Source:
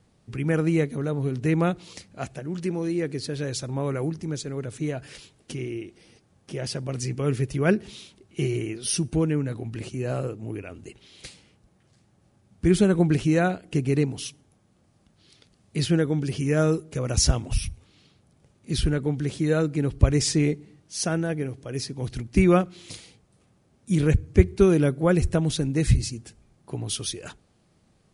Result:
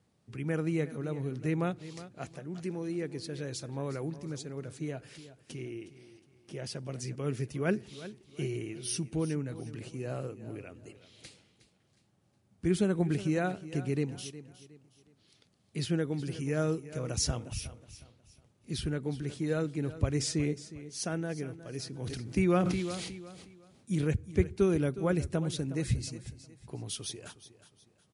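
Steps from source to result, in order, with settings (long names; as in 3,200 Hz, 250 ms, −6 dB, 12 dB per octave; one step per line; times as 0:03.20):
high-pass filter 81 Hz
repeating echo 363 ms, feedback 34%, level −15 dB
0:21.85–0:24.05: level that may fall only so fast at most 31 dB per second
level −8.5 dB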